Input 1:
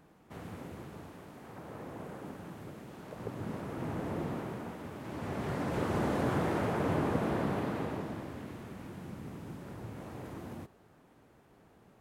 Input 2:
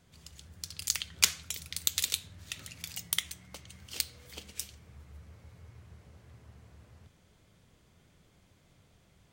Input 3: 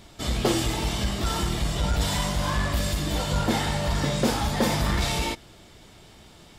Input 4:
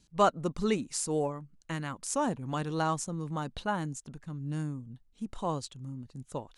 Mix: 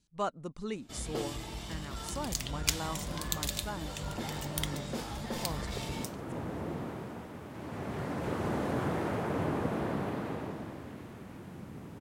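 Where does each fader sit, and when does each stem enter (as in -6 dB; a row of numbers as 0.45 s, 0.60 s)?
-1.5 dB, -5.5 dB, -14.5 dB, -9.0 dB; 2.50 s, 1.45 s, 0.70 s, 0.00 s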